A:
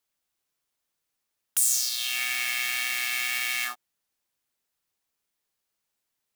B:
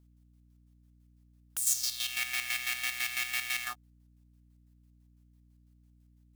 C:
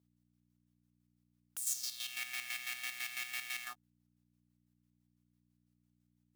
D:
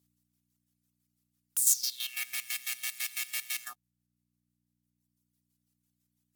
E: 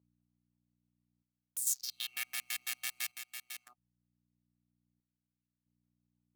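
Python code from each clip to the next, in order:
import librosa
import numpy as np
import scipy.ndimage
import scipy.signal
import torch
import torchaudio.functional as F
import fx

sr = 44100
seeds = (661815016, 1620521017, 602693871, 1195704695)

y1 = fx.chopper(x, sr, hz=6.0, depth_pct=60, duty_pct=40)
y1 = fx.add_hum(y1, sr, base_hz=60, snr_db=24)
y1 = y1 * 10.0 ** (-2.5 / 20.0)
y2 = scipy.signal.sosfilt(scipy.signal.butter(2, 130.0, 'highpass', fs=sr, output='sos'), y1)
y2 = y2 * 10.0 ** (-8.0 / 20.0)
y3 = fx.dereverb_blind(y2, sr, rt60_s=1.8)
y3 = fx.peak_eq(y3, sr, hz=13000.0, db=14.0, octaves=2.5)
y4 = fx.wiener(y3, sr, points=25)
y4 = fx.chopper(y4, sr, hz=0.53, depth_pct=60, duty_pct=65)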